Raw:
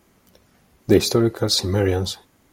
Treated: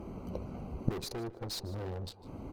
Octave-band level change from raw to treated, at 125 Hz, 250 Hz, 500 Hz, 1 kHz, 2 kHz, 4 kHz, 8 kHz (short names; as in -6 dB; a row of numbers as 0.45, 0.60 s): -14.5, -18.5, -21.0, -13.0, -19.5, -20.0, -20.0 dB